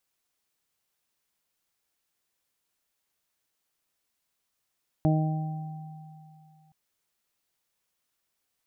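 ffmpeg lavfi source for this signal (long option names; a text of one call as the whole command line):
ffmpeg -f lavfi -i "aevalsrc='0.1*pow(10,-3*t/2.52)*sin(2*PI*156*t)+0.0631*pow(10,-3*t/1.11)*sin(2*PI*312*t)+0.0112*pow(10,-3*t/0.98)*sin(2*PI*468*t)+0.0398*pow(10,-3*t/1.03)*sin(2*PI*624*t)+0.0251*pow(10,-3*t/3.07)*sin(2*PI*780*t)':duration=1.67:sample_rate=44100" out.wav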